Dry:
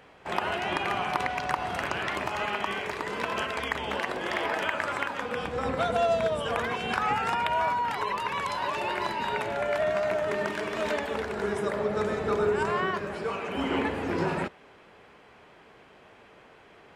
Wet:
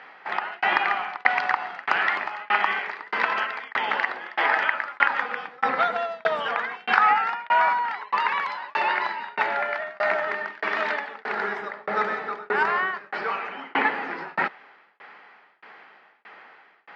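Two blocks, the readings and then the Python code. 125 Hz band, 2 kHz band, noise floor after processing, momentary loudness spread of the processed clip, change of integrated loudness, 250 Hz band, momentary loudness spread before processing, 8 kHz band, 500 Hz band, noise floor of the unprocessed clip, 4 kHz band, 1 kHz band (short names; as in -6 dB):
under -10 dB, +8.0 dB, -55 dBFS, 8 LU, +4.5 dB, -7.0 dB, 5 LU, under -10 dB, -3.0 dB, -54 dBFS, +0.5 dB, +5.5 dB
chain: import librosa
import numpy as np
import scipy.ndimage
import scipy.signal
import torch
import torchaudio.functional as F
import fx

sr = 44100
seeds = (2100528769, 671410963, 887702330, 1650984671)

y = fx.peak_eq(x, sr, hz=1800.0, db=10.5, octaves=2.2)
y = fx.tremolo_shape(y, sr, shape='saw_down', hz=1.6, depth_pct=100)
y = fx.cabinet(y, sr, low_hz=180.0, low_slope=24, high_hz=5500.0, hz=(820.0, 1300.0, 1900.0, 4600.0), db=(9, 6, 7, 6))
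y = y * 10.0 ** (-2.5 / 20.0)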